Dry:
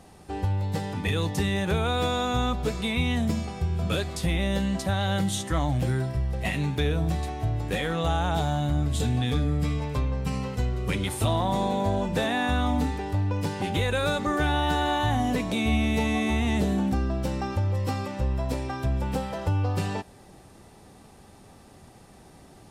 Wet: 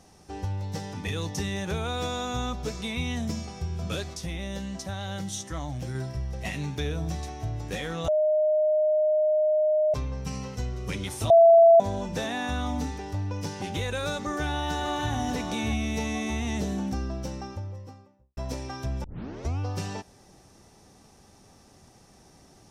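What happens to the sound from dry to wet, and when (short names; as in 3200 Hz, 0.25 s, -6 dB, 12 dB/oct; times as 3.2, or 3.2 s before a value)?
4.14–5.95 gain -3.5 dB
8.08–9.94 bleep 615 Hz -14.5 dBFS
11.3–11.8 bleep 669 Hz -6 dBFS
14.19–15.14 echo throw 0.59 s, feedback 15%, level -8 dB
16.98–18.37 studio fade out
19.04 tape start 0.55 s
whole clip: bell 5800 Hz +12.5 dB 0.41 oct; gain -5 dB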